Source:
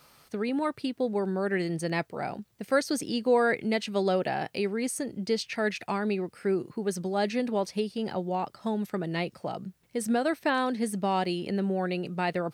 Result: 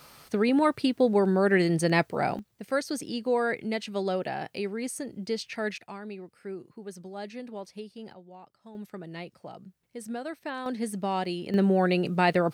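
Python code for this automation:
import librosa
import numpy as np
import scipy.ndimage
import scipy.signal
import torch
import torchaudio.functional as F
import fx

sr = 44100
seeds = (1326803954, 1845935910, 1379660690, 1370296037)

y = fx.gain(x, sr, db=fx.steps((0.0, 6.0), (2.39, -3.0), (5.78, -11.0), (8.13, -18.5), (8.75, -9.0), (10.66, -2.0), (11.54, 6.0)))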